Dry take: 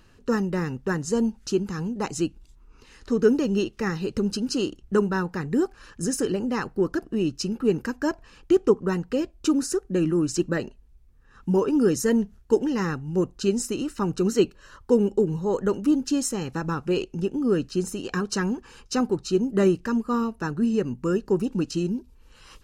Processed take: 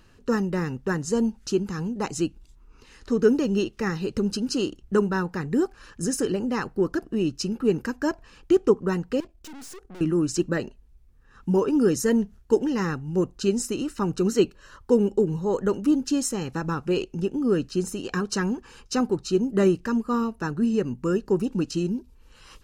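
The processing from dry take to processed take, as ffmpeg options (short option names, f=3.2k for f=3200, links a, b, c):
-filter_complex "[0:a]asettb=1/sr,asplit=3[a][b][c];[a]atrim=end=9.204[d];[b]atrim=start=9.2:end=10.01,asetpts=PTS-STARTPTS,afade=t=in:d=0.004:c=qsin,afade=t=out:st=0.806:d=0.004:c=qsin,aeval=exprs='(tanh(112*val(0)+0.7)-tanh(0.7))/112':c=same[e];[c]atrim=start=10.006[f];[d][e]acrossfade=d=0.004:c1=hsin:c2=qsin[g];[g][f]acrossfade=d=0.004:c1=qsin:c2=hsin"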